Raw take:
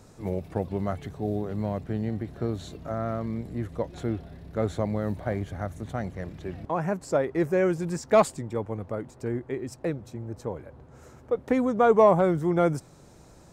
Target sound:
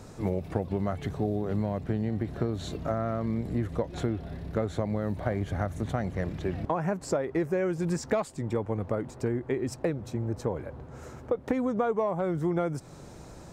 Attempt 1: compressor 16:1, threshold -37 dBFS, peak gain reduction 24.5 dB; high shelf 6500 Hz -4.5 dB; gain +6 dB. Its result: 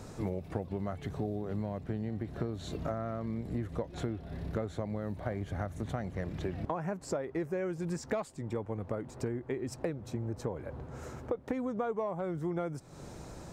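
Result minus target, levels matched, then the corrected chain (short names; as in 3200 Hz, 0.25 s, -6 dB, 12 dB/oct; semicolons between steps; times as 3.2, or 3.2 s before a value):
compressor: peak gain reduction +6.5 dB
compressor 16:1, threshold -30 dBFS, peak gain reduction 18 dB; high shelf 6500 Hz -4.5 dB; gain +6 dB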